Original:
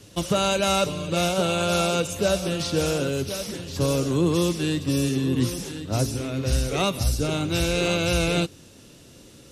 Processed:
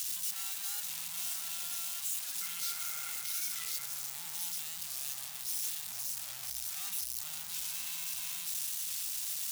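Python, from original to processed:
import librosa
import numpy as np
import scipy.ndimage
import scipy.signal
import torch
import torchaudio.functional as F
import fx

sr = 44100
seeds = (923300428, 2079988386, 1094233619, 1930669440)

y = np.sign(x) * np.sqrt(np.mean(np.square(x)))
y = scipy.signal.sosfilt(scipy.signal.ellip(3, 1.0, 40, [200.0, 730.0], 'bandstop', fs=sr, output='sos'), y)
y = F.preemphasis(torch.from_numpy(y), 0.97).numpy()
y = fx.rider(y, sr, range_db=10, speed_s=0.5)
y = np.clip(y, -10.0 ** (-19.5 / 20.0), 10.0 ** (-19.5 / 20.0))
y = fx.small_body(y, sr, hz=(470.0, 1400.0, 2100.0), ring_ms=35, db=15, at=(2.41, 3.85))
y = y + 10.0 ** (-14.0 / 20.0) * np.pad(y, (int(941 * sr / 1000.0), 0))[:len(y)]
y = fx.record_warp(y, sr, rpm=45.0, depth_cents=100.0)
y = y * librosa.db_to_amplitude(-8.0)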